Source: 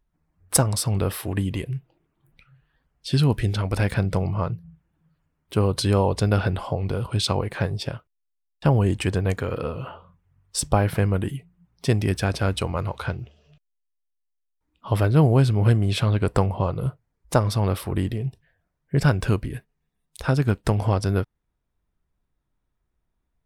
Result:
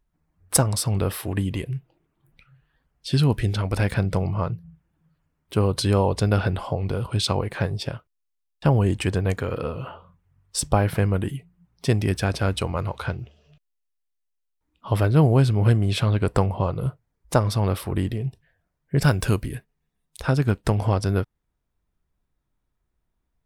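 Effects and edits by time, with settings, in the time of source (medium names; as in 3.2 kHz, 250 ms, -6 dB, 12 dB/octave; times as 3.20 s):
19.02–19.55 s: treble shelf 5.9 kHz +11.5 dB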